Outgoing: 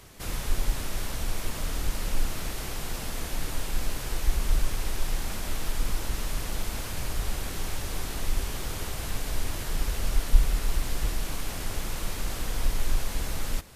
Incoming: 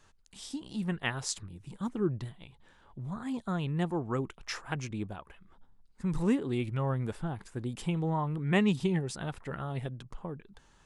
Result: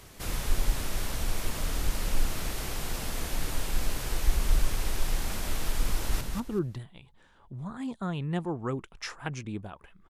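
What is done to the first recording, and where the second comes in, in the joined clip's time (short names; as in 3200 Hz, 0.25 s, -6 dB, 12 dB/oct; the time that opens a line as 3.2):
outgoing
5.93–6.21 echo throw 0.19 s, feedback 25%, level -5.5 dB
6.21 switch to incoming from 1.67 s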